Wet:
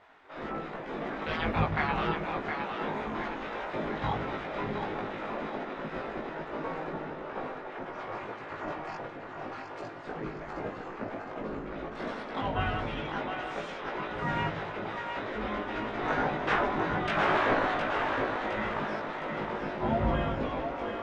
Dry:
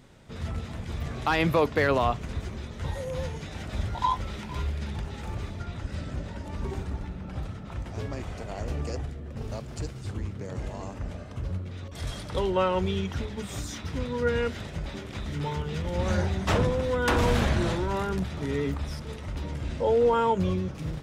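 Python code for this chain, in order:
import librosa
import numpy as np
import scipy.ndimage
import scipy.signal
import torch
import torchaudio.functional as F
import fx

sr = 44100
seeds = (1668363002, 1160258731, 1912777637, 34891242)

y = fx.lower_of_two(x, sr, delay_ms=4.2, at=(7.38, 10.07), fade=0.02)
y = fx.spec_gate(y, sr, threshold_db=-15, keep='weak')
y = scipy.signal.sosfilt(scipy.signal.butter(2, 1600.0, 'lowpass', fs=sr, output='sos'), y)
y = fx.doubler(y, sr, ms=19.0, db=-2)
y = fx.echo_split(y, sr, split_hz=390.0, low_ms=117, high_ms=713, feedback_pct=52, wet_db=-5.5)
y = y * librosa.db_to_amplitude(6.5)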